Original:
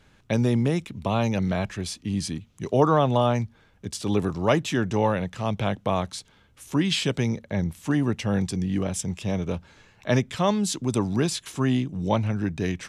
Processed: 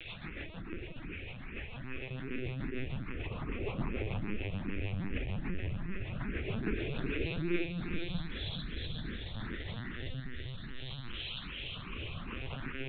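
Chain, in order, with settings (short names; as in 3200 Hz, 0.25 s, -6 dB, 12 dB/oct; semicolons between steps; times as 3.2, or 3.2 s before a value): rattling part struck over -34 dBFS, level -19 dBFS; reverse; compressor 16:1, threshold -33 dBFS, peak gain reduction 20 dB; reverse; dispersion lows, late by 68 ms, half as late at 330 Hz; Paulstretch 14×, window 0.10 s, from 10.75; diffused feedback echo 0.46 s, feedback 51%, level -10 dB; on a send at -6 dB: reverb RT60 0.45 s, pre-delay 57 ms; on the sum: echoes that change speed 0.11 s, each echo -5 st, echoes 3, each echo -6 dB; LPC vocoder at 8 kHz pitch kept; rotary speaker horn 6.7 Hz, later 0.65 Hz, at 7.02; endless phaser +2.5 Hz; gain +3.5 dB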